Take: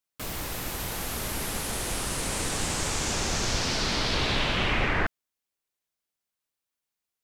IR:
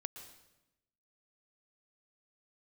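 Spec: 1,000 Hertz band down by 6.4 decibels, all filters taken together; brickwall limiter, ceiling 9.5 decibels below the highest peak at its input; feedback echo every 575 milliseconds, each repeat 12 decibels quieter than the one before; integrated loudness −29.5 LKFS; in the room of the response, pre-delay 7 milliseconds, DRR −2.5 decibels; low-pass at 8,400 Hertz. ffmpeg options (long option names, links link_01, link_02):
-filter_complex "[0:a]lowpass=8400,equalizer=frequency=1000:width_type=o:gain=-8.5,alimiter=limit=-24dB:level=0:latency=1,aecho=1:1:575|1150|1725:0.251|0.0628|0.0157,asplit=2[link_01][link_02];[1:a]atrim=start_sample=2205,adelay=7[link_03];[link_02][link_03]afir=irnorm=-1:irlink=0,volume=5dB[link_04];[link_01][link_04]amix=inputs=2:normalize=0,volume=-0.5dB"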